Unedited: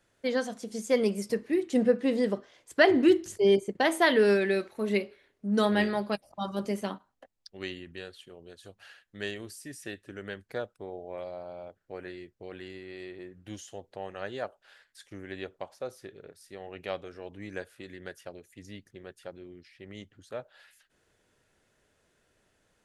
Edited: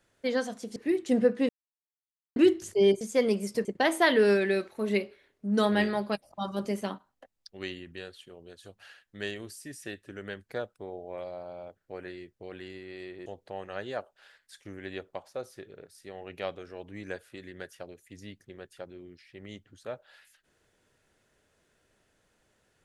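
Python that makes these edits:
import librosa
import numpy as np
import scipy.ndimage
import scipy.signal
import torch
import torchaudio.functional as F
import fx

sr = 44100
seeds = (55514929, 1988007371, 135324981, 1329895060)

y = fx.edit(x, sr, fx.move(start_s=0.76, length_s=0.64, to_s=3.65),
    fx.silence(start_s=2.13, length_s=0.87),
    fx.cut(start_s=13.26, length_s=0.46), tone=tone)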